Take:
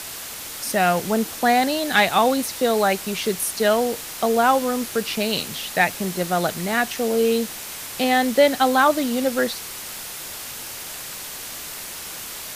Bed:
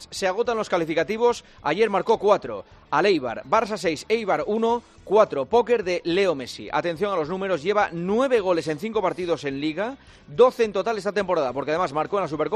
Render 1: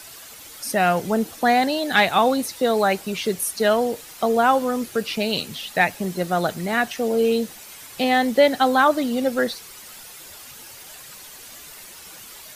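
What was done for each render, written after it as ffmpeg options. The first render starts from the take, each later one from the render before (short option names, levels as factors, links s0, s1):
-af "afftdn=nr=10:nf=-34"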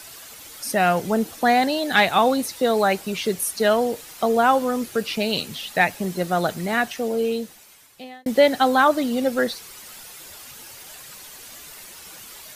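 -filter_complex "[0:a]asplit=2[s0][s1];[s0]atrim=end=8.26,asetpts=PTS-STARTPTS,afade=t=out:st=6.71:d=1.55[s2];[s1]atrim=start=8.26,asetpts=PTS-STARTPTS,afade=t=in:d=0.004:c=hsin[s3];[s2][s3]concat=n=2:v=0:a=1"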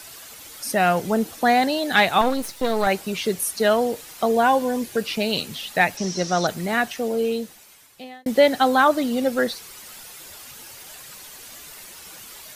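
-filter_complex "[0:a]asettb=1/sr,asplit=3[s0][s1][s2];[s0]atrim=end=2.214[s3];[s1]atrim=start=2.21:end=2.87,asetpts=PTS-STARTPTS,afade=t=in:d=0.004:c=qsin,afade=t=out:st=0.656:d=0.004:c=qsin,aeval=exprs='if(lt(val(0),0),0.251*val(0),val(0))':c=same[s4];[s2]atrim=start=2.866[s5];[s3][s4]acrossfade=d=0.004:c1=hsin:c2=qsin[s6];[s6][s5]acrossfade=d=0.004:c1=qsin:c2=hsin,asettb=1/sr,asplit=3[s7][s8][s9];[s7]atrim=end=4.314[s10];[s8]atrim=start=4.31:end=4.97,asetpts=PTS-STARTPTS,afade=t=in:d=0.004:c=qsin,afade=t=out:st=0.656:d=0.004:c=qsin,asuperstop=centerf=1300:order=20:qfactor=7.3[s11];[s9]atrim=start=4.966[s12];[s10][s11]acrossfade=d=0.004:c1=hsin:c2=qsin[s13];[s13][s12]acrossfade=d=0.004:c1=qsin:c2=hsin,asettb=1/sr,asplit=3[s14][s15][s16];[s14]atrim=end=5.974[s17];[s15]atrim=start=5.97:end=6.47,asetpts=PTS-STARTPTS,afade=t=in:d=0.004:c=qsin,afade=t=out:st=0.496:d=0.004:c=qsin,lowpass=f=5700:t=q:w=9.6[s18];[s16]atrim=start=6.466[s19];[s17][s18]acrossfade=d=0.004:c1=hsin:c2=qsin[s20];[s20][s19]acrossfade=d=0.004:c1=qsin:c2=hsin"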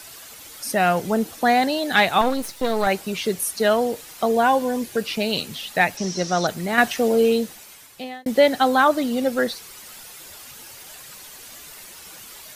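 -filter_complex "[0:a]asplit=3[s0][s1][s2];[s0]atrim=end=6.782[s3];[s1]atrim=start=6.778:end=8.252,asetpts=PTS-STARTPTS,volume=1.88[s4];[s2]atrim=start=8.248[s5];[s3][s4]acrossfade=d=0.004:c1=hsin:c2=hsin[s6];[s6][s5]acrossfade=d=0.004:c1=hsin:c2=hsin"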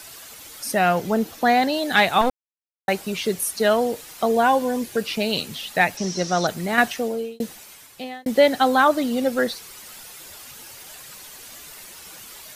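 -filter_complex "[0:a]asettb=1/sr,asplit=3[s0][s1][s2];[s0]atrim=end=0.794[s3];[s1]atrim=start=0.79:end=1.74,asetpts=PTS-STARTPTS,afade=t=in:d=0.004:c=qsin,afade=t=out:st=0.946:d=0.004:c=qsin,equalizer=f=9200:t=o:w=0.64:g=-5.5[s4];[s2]atrim=start=1.736[s5];[s3][s4]acrossfade=d=0.004:c1=hsin:c2=qsin[s6];[s6][s5]acrossfade=d=0.004:c1=qsin:c2=hsin,asplit=4[s7][s8][s9][s10];[s7]atrim=end=2.3,asetpts=PTS-STARTPTS,afade=t=out:st=2.296:d=0.004:c=hsin[s11];[s8]atrim=start=2.3:end=2.88,asetpts=PTS-STARTPTS,volume=0[s12];[s9]atrim=start=2.88:end=7.4,asetpts=PTS-STARTPTS,afade=t=in:d=0.004:c=hsin,afade=t=out:st=3.87:d=0.65[s13];[s10]atrim=start=7.4,asetpts=PTS-STARTPTS,afade=t=in:d=0.004:c=hsin[s14];[s11][s12][s13][s14]concat=n=4:v=0:a=1"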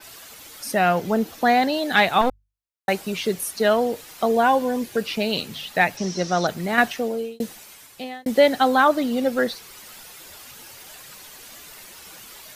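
-af "bandreject=f=50:t=h:w=6,bandreject=f=100:t=h:w=6,bandreject=f=150:t=h:w=6,adynamicequalizer=threshold=0.00631:dfrequency=9200:dqfactor=0.71:tfrequency=9200:tqfactor=0.71:attack=5:release=100:ratio=0.375:range=3:mode=cutabove:tftype=bell"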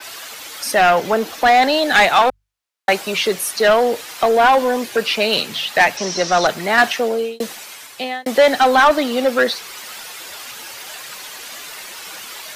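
-filter_complex "[0:a]acrossover=split=260|720|6000[s0][s1][s2][s3];[s0]volume=50.1,asoftclip=hard,volume=0.02[s4];[s4][s1][s2][s3]amix=inputs=4:normalize=0,asplit=2[s5][s6];[s6]highpass=f=720:p=1,volume=7.94,asoftclip=type=tanh:threshold=0.668[s7];[s5][s7]amix=inputs=2:normalize=0,lowpass=f=5300:p=1,volume=0.501"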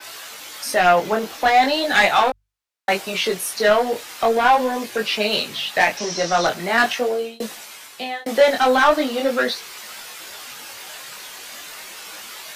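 -af "flanger=delay=18.5:depth=5.2:speed=0.4"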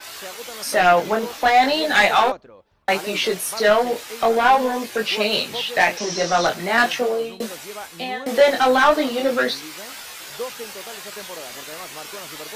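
-filter_complex "[1:a]volume=0.188[s0];[0:a][s0]amix=inputs=2:normalize=0"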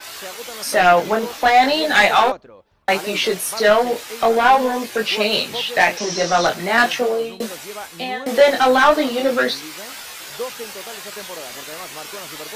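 -af "volume=1.26"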